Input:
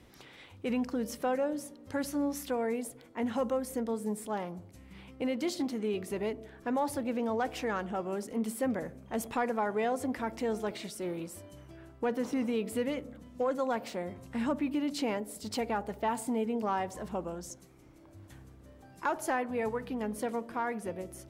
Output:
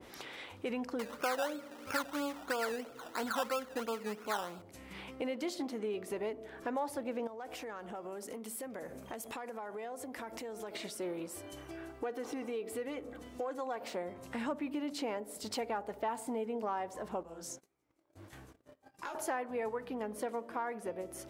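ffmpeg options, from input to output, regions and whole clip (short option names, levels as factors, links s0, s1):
-filter_complex "[0:a]asettb=1/sr,asplit=3[s0][s1][s2];[s0]atrim=end=0.994[s3];[s1]atrim=start=0.99:end=4.62,asetpts=PTS-STARTPTS,afade=t=in:d=0.004:c=qsin,afade=t=out:st=3.626:d=0.004:c=qsin,lowpass=f=1400:t=q:w=8.5,acrusher=samples=16:mix=1:aa=0.000001:lfo=1:lforange=9.6:lforate=3[s4];[s2]atrim=start=4.616[s5];[s3][s4]acrossfade=d=0.004:c1=hsin:c2=qsin[s6];[s6][s5]acrossfade=d=0.004:c1=qsin:c2=hsin,asettb=1/sr,asplit=3[s7][s8][s9];[s7]atrim=end=7.274[s10];[s8]atrim=start=7.27:end=10.75,asetpts=PTS-STARTPTS,afade=t=in:d=0.004:c=qsin,afade=t=out:st=3.476:d=0.004:c=qsin,highshelf=f=6400:g=8.5,acompressor=threshold=0.00794:ratio=8:attack=3.2:release=140:knee=1:detection=peak[s11];[s9]atrim=start=10.746[s12];[s10][s11]acrossfade=d=0.004:c1=hsin:c2=qsin[s13];[s13][s12]acrossfade=d=0.004:c1=qsin:c2=hsin,asettb=1/sr,asplit=3[s14][s15][s16];[s14]atrim=end=11.334[s17];[s15]atrim=start=11.33:end=13.81,asetpts=PTS-STARTPTS,afade=t=in:d=0.004:c=qsin,afade=t=out:st=2.476:d=0.004:c=qsin,aecho=1:1:2.6:0.47,atrim=end_sample=109368,acompressor=threshold=0.00891:ratio=1.5:attack=3.2:release=140:knee=1:detection=peak[s18];[s16]atrim=start=13.806[s19];[s17][s18]acrossfade=d=0.004:c1=hsin:c2=qsin[s20];[s20][s19]acrossfade=d=0.004:c1=qsin:c2=hsin,asettb=1/sr,asplit=3[s21][s22][s23];[s21]atrim=end=17.234[s24];[s22]atrim=start=17.23:end=19.15,asetpts=PTS-STARTPTS,afade=t=in:d=0.004:c=qsin,afade=t=out:st=1.916:d=0.004:c=qsin,acrossover=split=120|3000[s25][s26][s27];[s26]acompressor=threshold=0.00708:ratio=3:attack=3.2:release=140:knee=2.83:detection=peak[s28];[s25][s28][s27]amix=inputs=3:normalize=0,flanger=delay=16:depth=7.7:speed=1.7,agate=range=0.0562:threshold=0.00158:ratio=16:release=100:detection=peak[s29];[s23]atrim=start=19.146[s30];[s24][s29]acrossfade=d=0.004:c1=hsin:c2=qsin[s31];[s31][s30]acrossfade=d=0.004:c1=qsin:c2=hsin,bass=f=250:g=-12,treble=f=4000:g=-1,acompressor=threshold=0.00282:ratio=2,adynamicequalizer=threshold=0.001:dfrequency=1700:dqfactor=0.7:tfrequency=1700:tqfactor=0.7:attack=5:release=100:ratio=0.375:range=2.5:mode=cutabove:tftype=highshelf,volume=2.66"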